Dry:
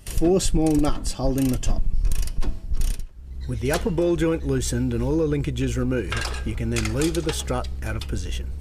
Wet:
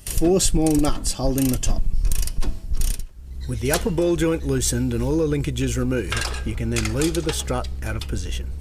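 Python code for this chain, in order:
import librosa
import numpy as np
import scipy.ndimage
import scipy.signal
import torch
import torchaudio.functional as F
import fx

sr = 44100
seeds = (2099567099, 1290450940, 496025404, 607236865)

y = fx.high_shelf(x, sr, hz=4600.0, db=fx.steps((0.0, 8.0), (6.22, 2.5)))
y = F.gain(torch.from_numpy(y), 1.0).numpy()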